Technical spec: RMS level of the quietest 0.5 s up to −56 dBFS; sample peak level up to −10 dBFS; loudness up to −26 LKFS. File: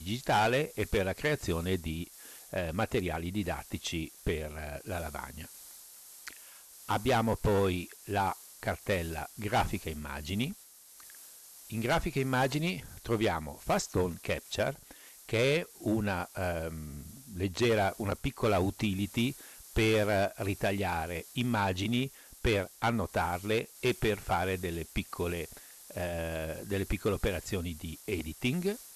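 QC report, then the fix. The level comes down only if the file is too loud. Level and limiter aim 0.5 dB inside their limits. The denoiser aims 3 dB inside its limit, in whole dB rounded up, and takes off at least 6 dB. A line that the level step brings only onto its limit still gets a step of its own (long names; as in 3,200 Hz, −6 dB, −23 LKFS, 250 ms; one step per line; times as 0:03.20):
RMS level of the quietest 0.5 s −55 dBFS: out of spec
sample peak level −19.5 dBFS: in spec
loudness −32.5 LKFS: in spec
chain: broadband denoise 6 dB, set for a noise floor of −55 dBFS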